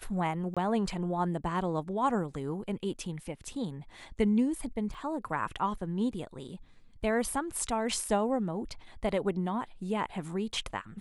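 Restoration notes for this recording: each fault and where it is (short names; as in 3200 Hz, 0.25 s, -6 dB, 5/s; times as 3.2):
0.54–0.57 gap 26 ms
4.94 gap 4.4 ms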